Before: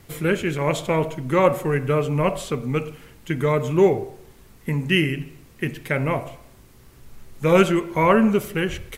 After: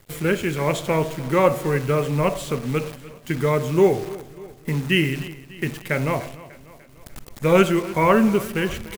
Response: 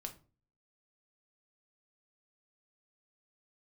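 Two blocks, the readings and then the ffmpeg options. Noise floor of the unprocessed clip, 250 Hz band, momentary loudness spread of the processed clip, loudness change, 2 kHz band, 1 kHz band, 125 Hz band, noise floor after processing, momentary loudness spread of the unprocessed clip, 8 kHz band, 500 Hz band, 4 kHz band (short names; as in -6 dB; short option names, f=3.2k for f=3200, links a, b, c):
-50 dBFS, 0.0 dB, 14 LU, 0.0 dB, 0.0 dB, 0.0 dB, 0.0 dB, -47 dBFS, 13 LU, +2.5 dB, 0.0 dB, +0.5 dB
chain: -filter_complex "[0:a]acrusher=bits=7:dc=4:mix=0:aa=0.000001,asplit=2[a][b];[b]aecho=0:1:297|594|891|1188|1485:0.119|0.0654|0.036|0.0198|0.0109[c];[a][c]amix=inputs=2:normalize=0"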